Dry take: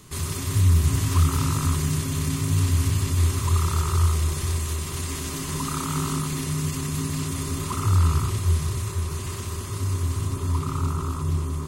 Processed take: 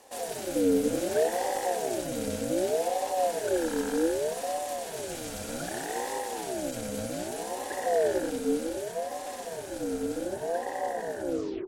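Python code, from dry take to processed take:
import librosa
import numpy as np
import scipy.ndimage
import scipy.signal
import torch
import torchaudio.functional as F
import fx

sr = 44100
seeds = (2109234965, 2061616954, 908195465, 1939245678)

y = fx.tape_stop_end(x, sr, length_s=0.37)
y = fx.ring_lfo(y, sr, carrier_hz=510.0, swing_pct=30, hz=0.65)
y = y * 10.0 ** (-4.0 / 20.0)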